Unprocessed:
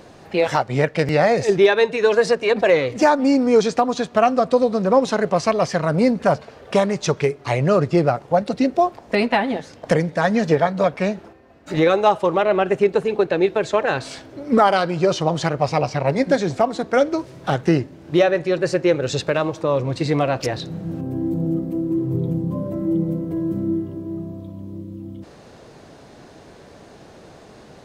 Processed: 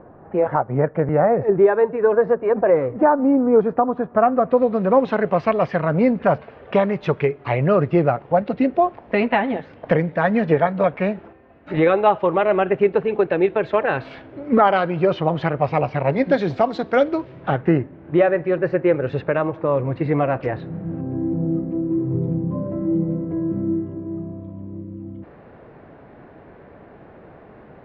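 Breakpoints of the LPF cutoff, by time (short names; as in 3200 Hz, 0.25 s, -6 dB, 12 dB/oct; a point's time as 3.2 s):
LPF 24 dB/oct
4.05 s 1400 Hz
4.81 s 2800 Hz
15.92 s 2800 Hz
16.73 s 4600 Hz
17.74 s 2200 Hz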